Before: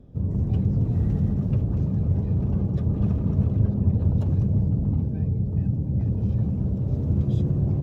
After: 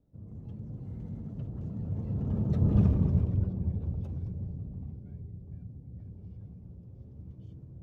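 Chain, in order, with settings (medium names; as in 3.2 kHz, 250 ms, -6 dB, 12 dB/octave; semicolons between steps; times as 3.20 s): Doppler pass-by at 2.80 s, 31 m/s, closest 8.2 m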